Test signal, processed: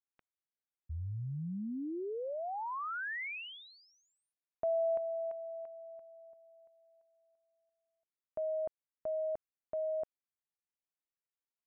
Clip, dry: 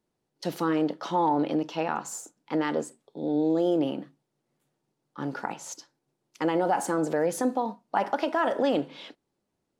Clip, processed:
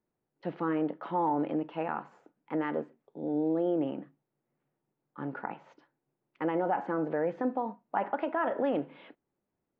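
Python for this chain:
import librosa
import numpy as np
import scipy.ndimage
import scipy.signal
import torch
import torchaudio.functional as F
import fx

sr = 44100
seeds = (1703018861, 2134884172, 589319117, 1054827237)

y = scipy.signal.sosfilt(scipy.signal.butter(4, 2400.0, 'lowpass', fs=sr, output='sos'), x)
y = y * 10.0 ** (-4.5 / 20.0)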